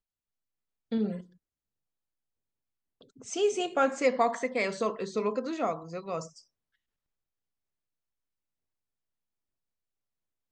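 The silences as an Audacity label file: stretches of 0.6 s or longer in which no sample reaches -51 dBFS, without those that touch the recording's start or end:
1.260000	3.010000	silence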